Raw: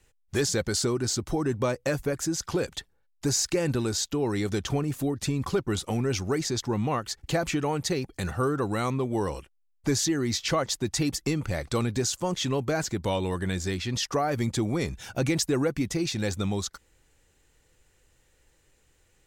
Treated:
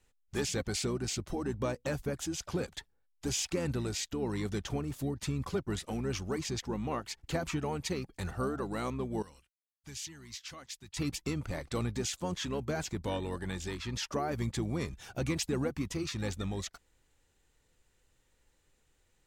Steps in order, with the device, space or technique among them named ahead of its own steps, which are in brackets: octave pedal (harmoniser -12 st -7 dB); 9.22–10.97 passive tone stack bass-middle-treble 5-5-5; gain -8 dB

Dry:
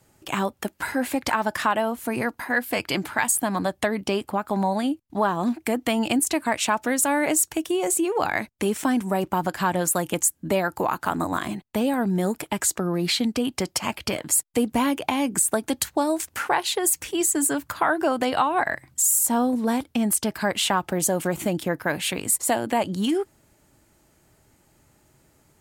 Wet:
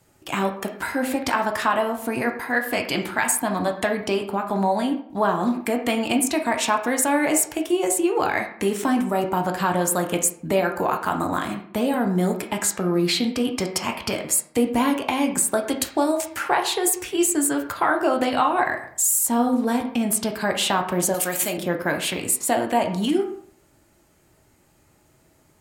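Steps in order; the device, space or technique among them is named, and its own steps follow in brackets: filtered reverb send (on a send: HPF 180 Hz + LPF 4300 Hz 12 dB/oct + reverb RT60 0.60 s, pre-delay 9 ms, DRR 3 dB); 21.14–21.58 on the sum: tilt +4 dB/oct

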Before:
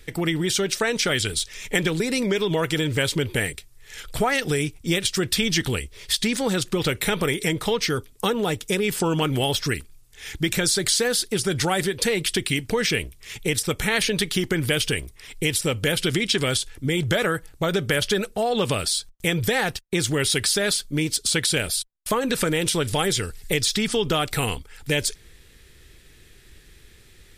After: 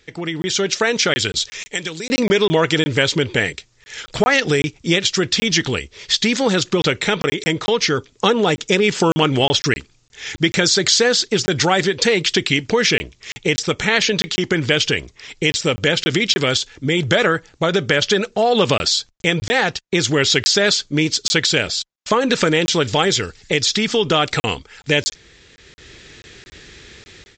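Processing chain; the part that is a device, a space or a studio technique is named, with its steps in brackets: 1.63–2.09 pre-emphasis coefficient 0.8; call with lost packets (HPF 170 Hz 6 dB/oct; downsampling 16000 Hz; AGC gain up to 14.5 dB; packet loss packets of 20 ms random); gain -1 dB

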